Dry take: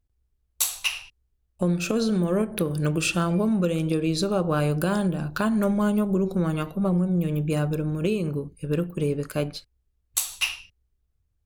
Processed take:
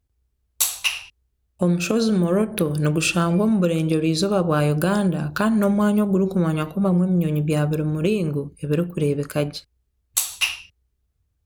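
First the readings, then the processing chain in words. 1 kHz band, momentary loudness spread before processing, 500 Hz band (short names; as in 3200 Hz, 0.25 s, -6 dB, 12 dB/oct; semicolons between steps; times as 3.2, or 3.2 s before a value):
+4.0 dB, 6 LU, +4.0 dB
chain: HPF 42 Hz; gain +4 dB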